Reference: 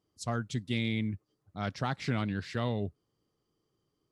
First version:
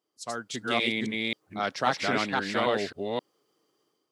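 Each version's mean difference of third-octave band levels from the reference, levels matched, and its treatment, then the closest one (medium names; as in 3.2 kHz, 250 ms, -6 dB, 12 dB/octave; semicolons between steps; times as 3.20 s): 8.0 dB: chunks repeated in reverse 266 ms, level -1 dB; high-pass 370 Hz 12 dB/octave; level rider gain up to 8 dB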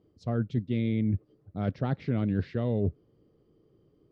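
6.5 dB: resonant low shelf 680 Hz +8 dB, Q 1.5; reverse; compression 5:1, threshold -32 dBFS, peak gain reduction 13.5 dB; reverse; distance through air 260 m; trim +7 dB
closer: second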